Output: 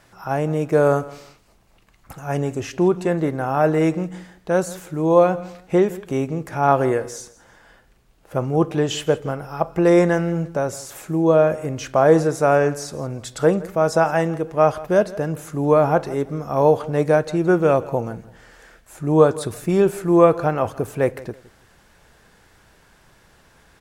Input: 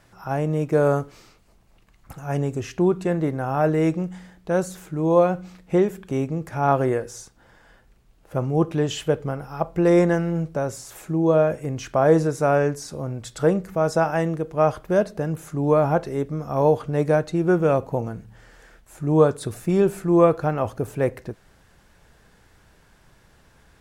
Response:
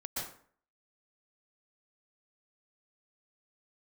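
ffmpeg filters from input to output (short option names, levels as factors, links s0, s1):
-filter_complex "[0:a]lowshelf=f=230:g=-5.5,asplit=2[s0][s1];[s1]aecho=0:1:166|332:0.112|0.0303[s2];[s0][s2]amix=inputs=2:normalize=0,volume=1.58"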